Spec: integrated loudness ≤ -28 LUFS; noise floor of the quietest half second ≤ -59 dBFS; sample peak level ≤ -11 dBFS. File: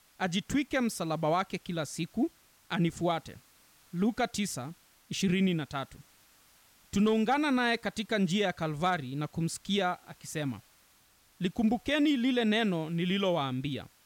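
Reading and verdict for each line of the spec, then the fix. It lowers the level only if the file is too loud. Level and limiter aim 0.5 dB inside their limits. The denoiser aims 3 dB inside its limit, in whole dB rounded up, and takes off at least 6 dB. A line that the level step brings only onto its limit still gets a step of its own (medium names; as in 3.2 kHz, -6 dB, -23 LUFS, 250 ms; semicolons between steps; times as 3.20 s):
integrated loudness -30.5 LUFS: pass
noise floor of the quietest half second -64 dBFS: pass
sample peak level -18.5 dBFS: pass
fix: none needed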